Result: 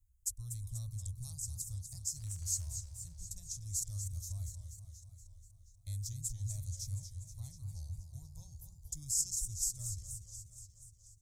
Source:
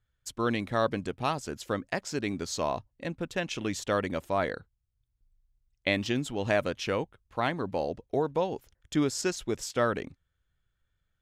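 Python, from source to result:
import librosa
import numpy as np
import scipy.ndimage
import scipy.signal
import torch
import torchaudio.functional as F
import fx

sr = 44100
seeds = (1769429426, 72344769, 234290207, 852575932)

y = scipy.signal.sosfilt(scipy.signal.cheby2(4, 50, [210.0, 3100.0], 'bandstop', fs=sr, output='sos'), x)
y = fx.dmg_crackle(y, sr, seeds[0], per_s=92.0, level_db=-55.0, at=(2.15, 2.66), fade=0.02)
y = fx.echo_warbled(y, sr, ms=239, feedback_pct=66, rate_hz=2.8, cents=191, wet_db=-8.5)
y = y * librosa.db_to_amplitude(8.0)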